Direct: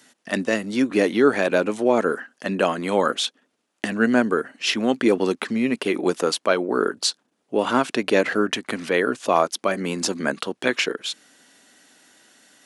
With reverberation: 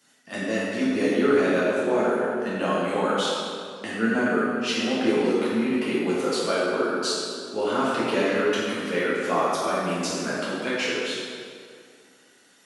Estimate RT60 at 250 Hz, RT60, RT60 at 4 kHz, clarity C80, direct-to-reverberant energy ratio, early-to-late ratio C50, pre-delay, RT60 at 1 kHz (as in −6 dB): 2.3 s, 2.2 s, 1.6 s, −1.0 dB, −9.5 dB, −3.0 dB, 3 ms, 2.2 s